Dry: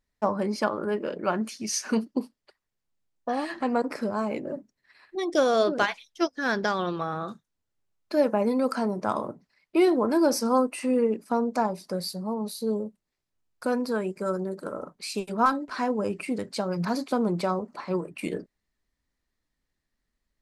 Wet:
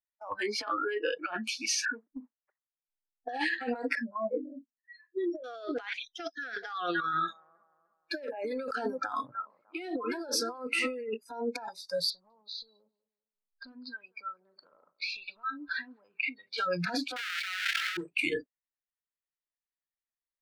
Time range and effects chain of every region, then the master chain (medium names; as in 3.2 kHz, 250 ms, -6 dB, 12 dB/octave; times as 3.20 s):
1.85–3.29 s: steep low-pass 2.1 kHz 48 dB/octave + compression, threshold -31 dBFS
3.95–5.44 s: spectral contrast enhancement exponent 2.3 + doubling 26 ms -9.5 dB
6.57–10.98 s: bass shelf 81 Hz -5 dB + bucket-brigade echo 301 ms, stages 4096, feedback 40%, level -12 dB
12.10–16.58 s: compression 12:1, threshold -36 dBFS + low-pass 4.7 kHz 24 dB/octave + feedback delay 198 ms, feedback 33%, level -18.5 dB
17.16–17.97 s: square wave that keeps the level + high-pass 1.4 kHz + level flattener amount 70%
whole clip: spectral noise reduction 30 dB; three-band isolator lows -17 dB, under 590 Hz, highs -18 dB, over 4 kHz; compressor with a negative ratio -41 dBFS, ratio -1; trim +6.5 dB